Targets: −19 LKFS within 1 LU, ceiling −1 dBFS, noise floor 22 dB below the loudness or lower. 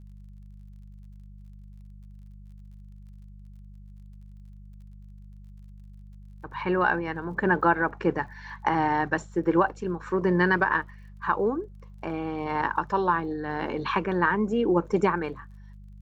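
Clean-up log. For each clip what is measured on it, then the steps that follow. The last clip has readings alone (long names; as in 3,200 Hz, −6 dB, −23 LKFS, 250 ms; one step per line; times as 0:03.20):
crackle rate 41 per second; mains hum 50 Hz; hum harmonics up to 200 Hz; level of the hum −43 dBFS; integrated loudness −26.0 LKFS; sample peak −9.0 dBFS; target loudness −19.0 LKFS
→ click removal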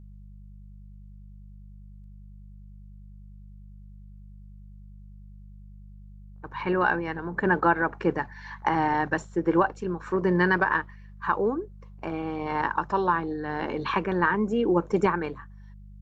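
crackle rate 0.062 per second; mains hum 50 Hz; hum harmonics up to 200 Hz; level of the hum −44 dBFS
→ hum removal 50 Hz, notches 4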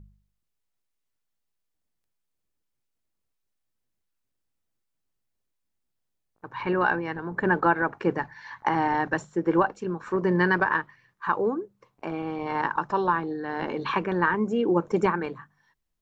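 mains hum none found; integrated loudness −26.5 LKFS; sample peak −9.5 dBFS; target loudness −19.0 LKFS
→ level +7.5 dB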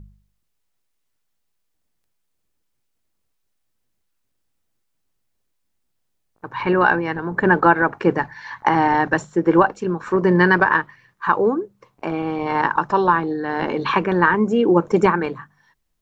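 integrated loudness −19.0 LKFS; sample peak −2.0 dBFS; background noise floor −72 dBFS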